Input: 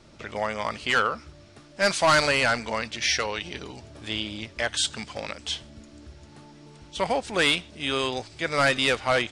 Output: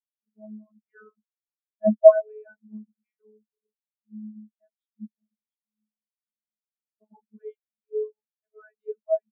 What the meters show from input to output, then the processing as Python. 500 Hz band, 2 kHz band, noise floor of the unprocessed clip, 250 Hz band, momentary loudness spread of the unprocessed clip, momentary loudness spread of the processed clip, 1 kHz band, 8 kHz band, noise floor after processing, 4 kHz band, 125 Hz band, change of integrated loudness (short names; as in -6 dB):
+4.5 dB, under -25 dB, -51 dBFS, -1.5 dB, 14 LU, 22 LU, -11.0 dB, under -40 dB, under -85 dBFS, under -40 dB, under -10 dB, +4.5 dB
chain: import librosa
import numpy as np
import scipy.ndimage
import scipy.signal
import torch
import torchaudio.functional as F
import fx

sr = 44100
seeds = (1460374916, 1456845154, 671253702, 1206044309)

y = fx.vocoder(x, sr, bands=32, carrier='saw', carrier_hz=214.0)
y = fx.spectral_expand(y, sr, expansion=4.0)
y = y * 10.0 ** (8.5 / 20.0)